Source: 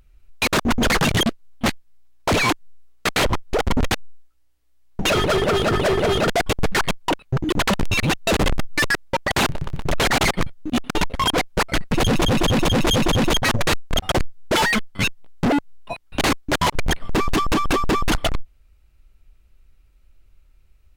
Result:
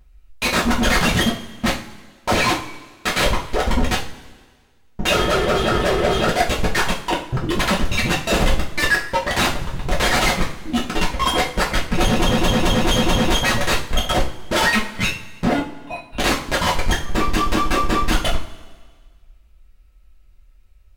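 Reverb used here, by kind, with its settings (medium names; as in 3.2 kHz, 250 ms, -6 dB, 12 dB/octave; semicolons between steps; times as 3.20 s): two-slope reverb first 0.34 s, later 1.6 s, from -18 dB, DRR -5 dB; trim -4.5 dB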